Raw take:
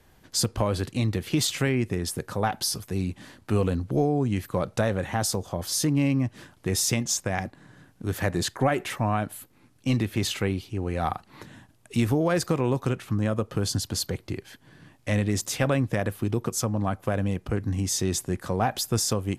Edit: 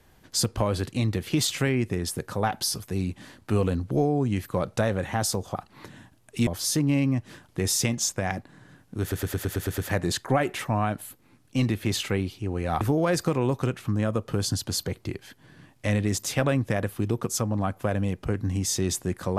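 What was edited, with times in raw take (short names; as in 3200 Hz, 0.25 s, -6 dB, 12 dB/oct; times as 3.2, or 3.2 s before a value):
8.09 stutter 0.11 s, 8 plays
11.12–12.04 move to 5.55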